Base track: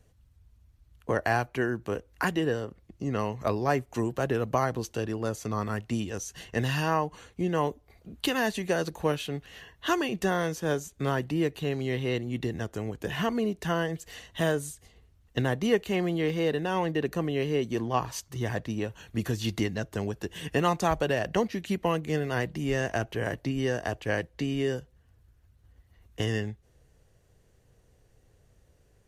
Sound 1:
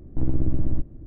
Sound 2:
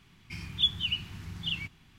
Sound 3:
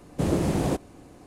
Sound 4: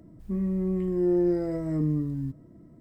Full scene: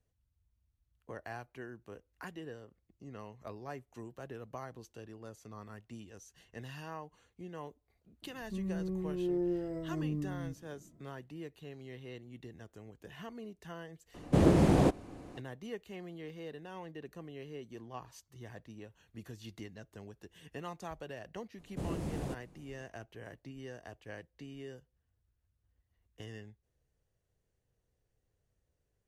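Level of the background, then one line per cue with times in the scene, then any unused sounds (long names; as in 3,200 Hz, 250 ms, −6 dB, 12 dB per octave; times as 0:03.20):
base track −18 dB
0:08.22: mix in 4 −9.5 dB
0:14.14: mix in 3 + high-shelf EQ 6,200 Hz −10.5 dB
0:21.58: mix in 3 −15 dB + low-shelf EQ 74 Hz +9.5 dB
not used: 1, 2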